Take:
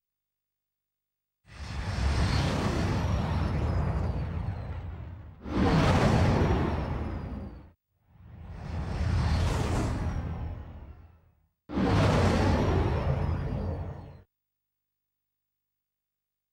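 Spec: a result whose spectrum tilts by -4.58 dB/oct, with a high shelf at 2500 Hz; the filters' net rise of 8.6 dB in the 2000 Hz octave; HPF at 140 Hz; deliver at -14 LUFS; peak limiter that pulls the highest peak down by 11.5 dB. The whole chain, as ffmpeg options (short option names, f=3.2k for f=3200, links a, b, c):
-af "highpass=140,equalizer=f=2k:t=o:g=6.5,highshelf=f=2.5k:g=9,volume=19dB,alimiter=limit=-3.5dB:level=0:latency=1"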